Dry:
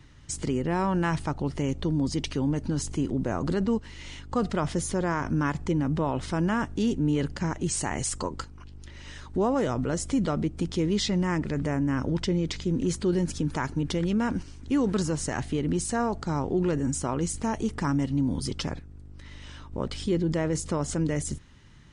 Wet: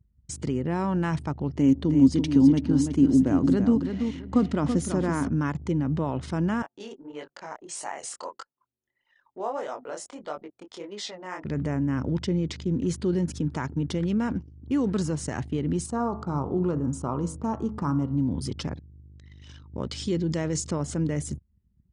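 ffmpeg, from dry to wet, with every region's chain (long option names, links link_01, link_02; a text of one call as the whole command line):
ffmpeg -i in.wav -filter_complex "[0:a]asettb=1/sr,asplit=3[link_01][link_02][link_03];[link_01]atrim=end=1.564[link_04];[link_02]atrim=start=1.56:end=5.28,asetpts=PTS-STARTPTS,afade=type=in:duration=0.004:curve=qsin,afade=type=out:start_time=3.716:duration=0.004:curve=qsin,equalizer=frequency=270:width=3.9:gain=12.5,aecho=1:1:332|664|996:0.447|0.121|0.0326,atrim=end_sample=164052[link_05];[link_03]atrim=start=5.276[link_06];[link_04][link_05]acrossfade=duration=0.004:curve1=hsin:curve2=qsin[link_07];[link_07][link_06]acrossfade=duration=0.004:curve1=qsin:curve2=hsin,asettb=1/sr,asplit=3[link_08][link_09][link_10];[link_08]atrim=end=6.624[link_11];[link_09]atrim=start=6.62:end=11.44,asetpts=PTS-STARTPTS,afade=type=in:duration=0.004:curve=qsin,afade=type=out:start_time=4.816:duration=0.004:curve=qsin,highpass=frequency=660:width_type=q:width=1.6,flanger=delay=19.5:depth=7.5:speed=1.6[link_12];[link_10]atrim=start=11.436[link_13];[link_11][link_12]acrossfade=duration=0.004:curve1=hsin:curve2=qsin[link_14];[link_14][link_13]acrossfade=duration=0.004:curve1=qsin:curve2=hsin,asettb=1/sr,asplit=3[link_15][link_16][link_17];[link_15]atrim=end=15.864[link_18];[link_16]atrim=start=15.86:end=18.19,asetpts=PTS-STARTPTS,afade=type=in:duration=0.004:curve=qsin,afade=type=out:start_time=2.326:duration=0.004:curve=qsin,highshelf=frequency=1500:width_type=q:width=3:gain=-6,bandreject=frequency=53.67:width_type=h:width=4,bandreject=frequency=107.34:width_type=h:width=4,bandreject=frequency=161.01:width_type=h:width=4,bandreject=frequency=214.68:width_type=h:width=4,bandreject=frequency=268.35:width_type=h:width=4,bandreject=frequency=322.02:width_type=h:width=4,bandreject=frequency=375.69:width_type=h:width=4,bandreject=frequency=429.36:width_type=h:width=4,bandreject=frequency=483.03:width_type=h:width=4,bandreject=frequency=536.7:width_type=h:width=4,bandreject=frequency=590.37:width_type=h:width=4,bandreject=frequency=644.04:width_type=h:width=4,bandreject=frequency=697.71:width_type=h:width=4,bandreject=frequency=751.38:width_type=h:width=4,bandreject=frequency=805.05:width_type=h:width=4,bandreject=frequency=858.72:width_type=h:width=4,bandreject=frequency=912.39:width_type=h:width=4,bandreject=frequency=966.06:width_type=h:width=4,bandreject=frequency=1019.73:width_type=h:width=4,bandreject=frequency=1073.4:width_type=h:width=4,bandreject=frequency=1127.07:width_type=h:width=4,bandreject=frequency=1180.74:width_type=h:width=4,bandreject=frequency=1234.41:width_type=h:width=4,bandreject=frequency=1288.08:width_type=h:width=4,bandreject=frequency=1341.75:width_type=h:width=4,bandreject=frequency=1395.42:width_type=h:width=4,bandreject=frequency=1449.09:width_type=h:width=4,bandreject=frequency=1502.76:width_type=h:width=4,bandreject=frequency=1556.43:width_type=h:width=4,bandreject=frequency=1610.1:width_type=h:width=4,bandreject=frequency=1663.77:width_type=h:width=4,bandreject=frequency=1717.44:width_type=h:width=4,bandreject=frequency=1771.11:width_type=h:width=4,bandreject=frequency=1824.78:width_type=h:width=4,bandreject=frequency=1878.45:width_type=h:width=4,bandreject=frequency=1932.12:width_type=h:width=4,bandreject=frequency=1985.79:width_type=h:width=4[link_19];[link_17]atrim=start=18.186[link_20];[link_18][link_19]acrossfade=duration=0.004:curve1=hsin:curve2=qsin[link_21];[link_21][link_20]acrossfade=duration=0.004:curve1=qsin:curve2=hsin,asettb=1/sr,asplit=3[link_22][link_23][link_24];[link_22]atrim=end=18.744[link_25];[link_23]atrim=start=18.74:end=20.71,asetpts=PTS-STARTPTS,afade=type=in:duration=0.004:curve=qsin,afade=type=out:start_time=1.966:duration=0.004:curve=qsin,lowpass=frequency=7100:width=0.5412,lowpass=frequency=7100:width=1.3066,aemphasis=mode=production:type=75fm[link_26];[link_24]atrim=start=20.706[link_27];[link_25][link_26]acrossfade=duration=0.004:curve1=hsin:curve2=qsin[link_28];[link_28][link_27]acrossfade=duration=0.004:curve1=qsin:curve2=hsin,highpass=frequency=63:width=0.5412,highpass=frequency=63:width=1.3066,anlmdn=0.251,lowshelf=frequency=350:gain=5.5,volume=-3.5dB" out.wav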